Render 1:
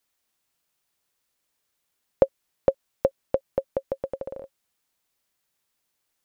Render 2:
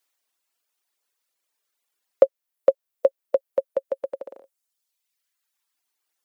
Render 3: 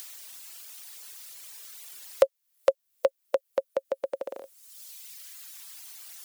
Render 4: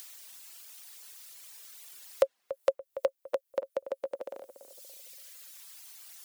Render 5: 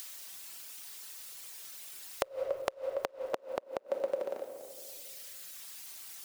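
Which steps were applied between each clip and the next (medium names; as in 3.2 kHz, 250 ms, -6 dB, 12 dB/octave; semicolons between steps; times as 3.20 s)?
dynamic bell 560 Hz, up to +5 dB, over -32 dBFS; reverb removal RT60 1.5 s; Bessel high-pass 390 Hz, order 4; trim +1.5 dB
treble shelf 2 kHz +11.5 dB; upward compressor, threshold -16 dBFS; trim -6 dB
filtered feedback delay 286 ms, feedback 41%, low-pass 1.2 kHz, level -12 dB; trim -4.5 dB
crackle 460 per s -54 dBFS; simulated room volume 1400 m³, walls mixed, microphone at 1.1 m; inverted gate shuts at -20 dBFS, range -25 dB; trim +2 dB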